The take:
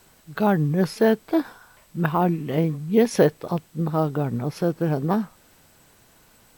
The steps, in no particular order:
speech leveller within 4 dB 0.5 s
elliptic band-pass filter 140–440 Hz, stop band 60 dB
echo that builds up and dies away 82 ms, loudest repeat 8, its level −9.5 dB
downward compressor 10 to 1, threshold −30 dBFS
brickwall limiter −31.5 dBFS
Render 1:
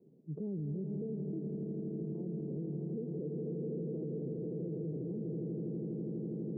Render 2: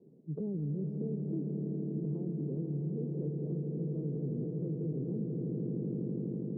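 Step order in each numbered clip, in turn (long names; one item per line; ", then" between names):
echo that builds up and dies away, then speech leveller, then downward compressor, then elliptic band-pass filter, then brickwall limiter
elliptic band-pass filter, then brickwall limiter, then echo that builds up and dies away, then speech leveller, then downward compressor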